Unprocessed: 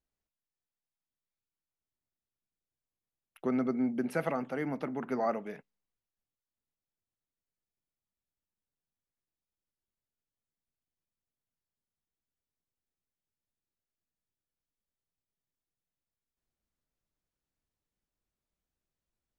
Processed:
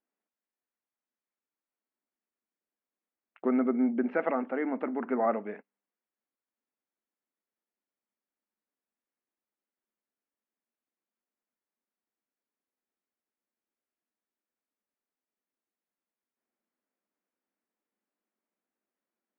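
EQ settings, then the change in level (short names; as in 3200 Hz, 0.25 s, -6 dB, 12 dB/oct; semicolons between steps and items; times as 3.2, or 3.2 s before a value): brick-wall FIR high-pass 190 Hz; LPF 2400 Hz 24 dB/oct; air absorption 110 m; +4.0 dB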